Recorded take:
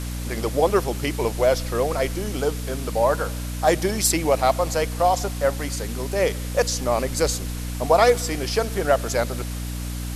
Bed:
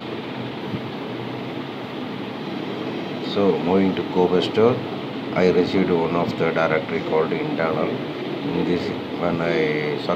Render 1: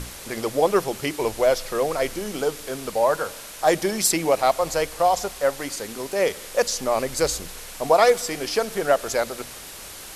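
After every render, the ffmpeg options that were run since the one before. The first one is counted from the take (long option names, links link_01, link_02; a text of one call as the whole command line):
ffmpeg -i in.wav -af "bandreject=frequency=60:width_type=h:width=6,bandreject=frequency=120:width_type=h:width=6,bandreject=frequency=180:width_type=h:width=6,bandreject=frequency=240:width_type=h:width=6,bandreject=frequency=300:width_type=h:width=6" out.wav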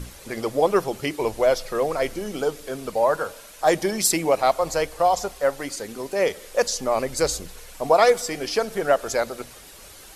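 ffmpeg -i in.wav -af "afftdn=noise_reduction=8:noise_floor=-39" out.wav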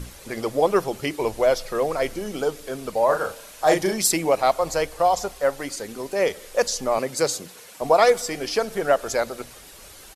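ffmpeg -i in.wav -filter_complex "[0:a]asplit=3[link_01][link_02][link_03];[link_01]afade=type=out:start_time=3.08:duration=0.02[link_04];[link_02]asplit=2[link_05][link_06];[link_06]adelay=37,volume=-5dB[link_07];[link_05][link_07]amix=inputs=2:normalize=0,afade=type=in:start_time=3.08:duration=0.02,afade=type=out:start_time=3.93:duration=0.02[link_08];[link_03]afade=type=in:start_time=3.93:duration=0.02[link_09];[link_04][link_08][link_09]amix=inputs=3:normalize=0,asettb=1/sr,asplit=3[link_10][link_11][link_12];[link_10]atrim=end=6.984[link_13];[link_11]atrim=start=6.98:end=7.82,asetpts=PTS-STARTPTS,afade=type=in:duration=0.004:curve=qsin,afade=type=out:start_time=0.836:duration=0.004:curve=qsin,highpass=frequency=120:width=0.5412,highpass=frequency=120:width=1.3066[link_14];[link_12]atrim=start=7.816[link_15];[link_13][link_14]acrossfade=duration=0.004:curve1=hsin:curve2=qsin[link_16];[link_16][link_15]acrossfade=duration=0.004:curve1=qsin:curve2=hsin" out.wav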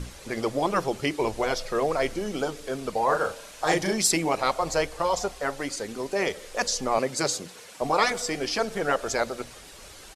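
ffmpeg -i in.wav -af "afftfilt=real='re*lt(hypot(re,im),0.891)':imag='im*lt(hypot(re,im),0.891)':win_size=1024:overlap=0.75,lowpass=8900" out.wav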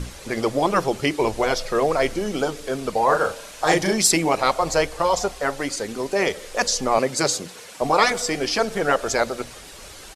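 ffmpeg -i in.wav -af "volume=5dB" out.wav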